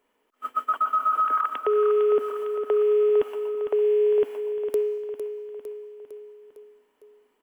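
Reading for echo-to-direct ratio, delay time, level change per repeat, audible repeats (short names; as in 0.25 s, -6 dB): -7.5 dB, 0.455 s, -5.0 dB, 5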